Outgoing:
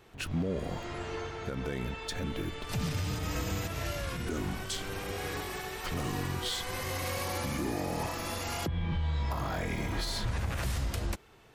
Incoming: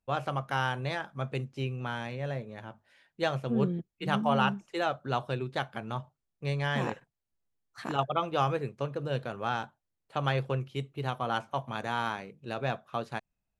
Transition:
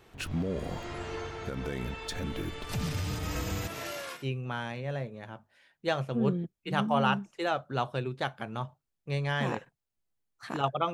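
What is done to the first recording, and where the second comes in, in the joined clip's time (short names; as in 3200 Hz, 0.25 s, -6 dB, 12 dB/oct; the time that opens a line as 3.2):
outgoing
3.67–4.27 HPF 150 Hz -> 730 Hz
4.19 switch to incoming from 1.54 s, crossfade 0.16 s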